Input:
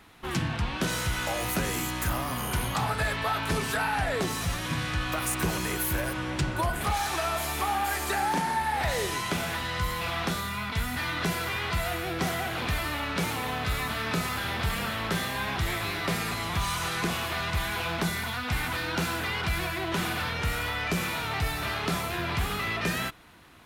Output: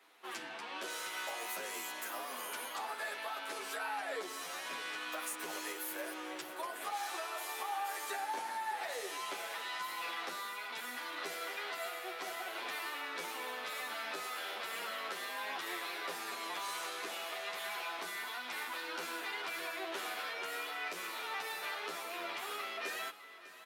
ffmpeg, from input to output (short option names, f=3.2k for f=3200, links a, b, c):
-filter_complex "[0:a]highpass=f=360:w=0.5412,highpass=f=360:w=1.3066,alimiter=limit=-21.5dB:level=0:latency=1:release=357,asplit=2[a][b];[b]aecho=0:1:603|1206|1809|2412:0.178|0.0729|0.0299|0.0123[c];[a][c]amix=inputs=2:normalize=0,asplit=2[d][e];[e]adelay=9.8,afreqshift=-0.36[f];[d][f]amix=inputs=2:normalize=1,volume=-5.5dB"